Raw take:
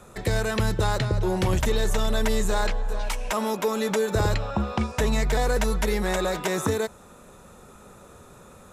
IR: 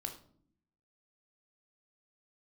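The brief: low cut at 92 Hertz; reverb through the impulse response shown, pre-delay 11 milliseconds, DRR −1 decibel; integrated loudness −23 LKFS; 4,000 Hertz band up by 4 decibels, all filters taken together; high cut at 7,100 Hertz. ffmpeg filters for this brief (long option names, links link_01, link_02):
-filter_complex "[0:a]highpass=92,lowpass=7100,equalizer=frequency=4000:width_type=o:gain=5,asplit=2[link_01][link_02];[1:a]atrim=start_sample=2205,adelay=11[link_03];[link_02][link_03]afir=irnorm=-1:irlink=0,volume=2.5dB[link_04];[link_01][link_04]amix=inputs=2:normalize=0,volume=-1dB"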